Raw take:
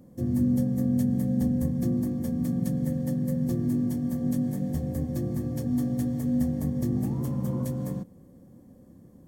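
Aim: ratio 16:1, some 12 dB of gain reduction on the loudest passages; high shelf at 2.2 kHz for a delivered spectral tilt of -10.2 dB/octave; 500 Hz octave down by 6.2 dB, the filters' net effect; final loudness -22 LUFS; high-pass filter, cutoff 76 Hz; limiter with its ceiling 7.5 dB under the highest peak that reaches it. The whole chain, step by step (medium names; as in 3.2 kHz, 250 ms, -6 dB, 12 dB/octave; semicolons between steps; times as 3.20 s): high-pass 76 Hz; peaking EQ 500 Hz -8 dB; treble shelf 2.2 kHz +8.5 dB; compression 16:1, threshold -34 dBFS; trim +19.5 dB; peak limiter -14 dBFS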